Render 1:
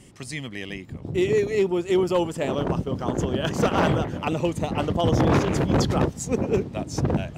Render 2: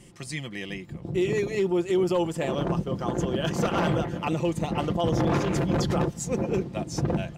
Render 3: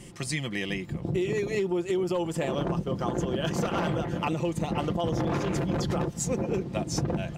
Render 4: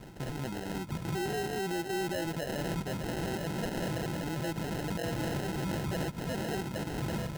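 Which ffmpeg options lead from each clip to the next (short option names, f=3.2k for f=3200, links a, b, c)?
-af "aecho=1:1:5.8:0.46,alimiter=limit=-14.5dB:level=0:latency=1:release=33,volume=-2dB"
-af "acompressor=threshold=-30dB:ratio=6,volume=5dB"
-af "alimiter=level_in=1.5dB:limit=-24dB:level=0:latency=1:release=13,volume=-1.5dB,acrusher=samples=38:mix=1:aa=0.000001,volume=-1.5dB"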